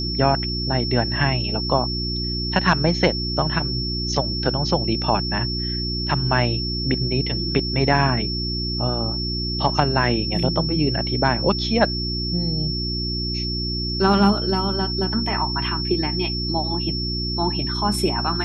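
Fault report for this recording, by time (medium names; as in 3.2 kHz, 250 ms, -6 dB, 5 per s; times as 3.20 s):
hum 60 Hz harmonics 6 -27 dBFS
whine 5.4 kHz -26 dBFS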